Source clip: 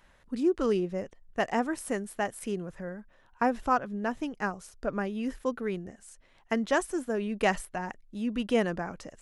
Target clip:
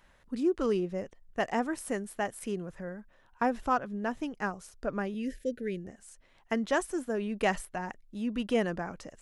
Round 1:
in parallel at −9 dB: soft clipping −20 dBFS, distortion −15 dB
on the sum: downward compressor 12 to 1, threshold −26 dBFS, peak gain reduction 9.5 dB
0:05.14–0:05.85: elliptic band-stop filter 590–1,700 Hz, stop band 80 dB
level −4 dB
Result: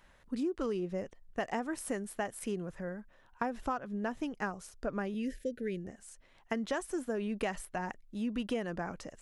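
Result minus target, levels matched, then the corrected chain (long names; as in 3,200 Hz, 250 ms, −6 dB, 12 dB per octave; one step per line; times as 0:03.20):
downward compressor: peak gain reduction +9.5 dB
in parallel at −9 dB: soft clipping −20 dBFS, distortion −15 dB
0:05.14–0:05.85: on the sum: elliptic band-stop filter 590–1,700 Hz, stop band 80 dB
level −4 dB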